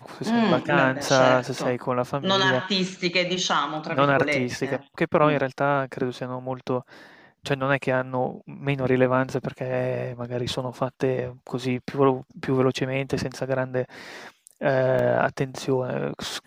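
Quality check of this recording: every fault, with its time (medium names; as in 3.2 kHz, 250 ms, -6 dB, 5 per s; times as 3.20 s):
14.99 s: dropout 2.4 ms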